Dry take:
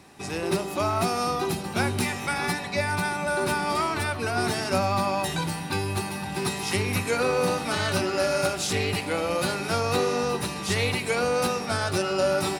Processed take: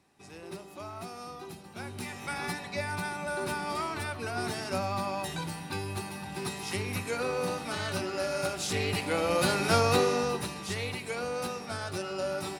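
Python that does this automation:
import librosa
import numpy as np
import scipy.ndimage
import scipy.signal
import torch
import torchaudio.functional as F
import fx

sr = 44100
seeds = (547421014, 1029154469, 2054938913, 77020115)

y = fx.gain(x, sr, db=fx.line((1.77, -16.5), (2.33, -7.5), (8.31, -7.5), (9.76, 2.0), (10.8, -9.5)))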